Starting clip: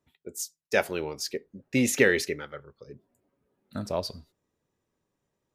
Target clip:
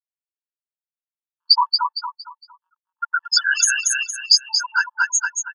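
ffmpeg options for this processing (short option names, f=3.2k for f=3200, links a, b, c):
-filter_complex "[0:a]areverse,bandreject=f=1.7k:w=18,aecho=1:1:7.1:0.57,acontrast=52,acrossover=split=290|1700|1900[a][b][c][d];[c]asoftclip=type=tanh:threshold=-33dB[e];[a][b][e][d]amix=inputs=4:normalize=0,afftfilt=real='re*gte(hypot(re,im),0.126)':imag='im*gte(hypot(re,im),0.126)':win_size=1024:overlap=0.75,highpass=110,lowpass=6.4k,aecho=1:1:230|460|690|920:0.531|0.175|0.0578|0.0191,alimiter=level_in=16dB:limit=-1dB:release=50:level=0:latency=1,afftfilt=real='re*eq(mod(floor(b*sr/1024/880),2),1)':imag='im*eq(mod(floor(b*sr/1024/880),2),1)':win_size=1024:overlap=0.75,volume=3dB"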